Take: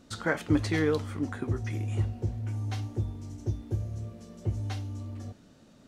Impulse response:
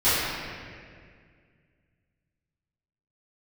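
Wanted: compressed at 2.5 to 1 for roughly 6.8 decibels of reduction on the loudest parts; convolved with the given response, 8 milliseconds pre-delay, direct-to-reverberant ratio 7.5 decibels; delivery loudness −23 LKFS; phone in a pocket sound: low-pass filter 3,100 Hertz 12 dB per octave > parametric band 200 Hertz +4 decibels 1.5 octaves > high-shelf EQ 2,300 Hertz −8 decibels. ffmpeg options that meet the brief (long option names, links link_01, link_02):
-filter_complex "[0:a]acompressor=threshold=-29dB:ratio=2.5,asplit=2[link_01][link_02];[1:a]atrim=start_sample=2205,adelay=8[link_03];[link_02][link_03]afir=irnorm=-1:irlink=0,volume=-26dB[link_04];[link_01][link_04]amix=inputs=2:normalize=0,lowpass=3100,equalizer=frequency=200:width_type=o:width=1.5:gain=4,highshelf=frequency=2300:gain=-8,volume=8dB"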